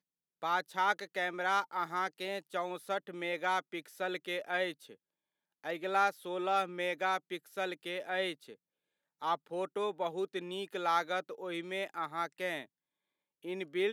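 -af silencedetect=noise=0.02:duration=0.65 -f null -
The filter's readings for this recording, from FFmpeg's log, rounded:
silence_start: 4.71
silence_end: 5.66 | silence_duration: 0.94
silence_start: 8.32
silence_end: 9.22 | silence_duration: 0.90
silence_start: 12.62
silence_end: 13.48 | silence_duration: 0.86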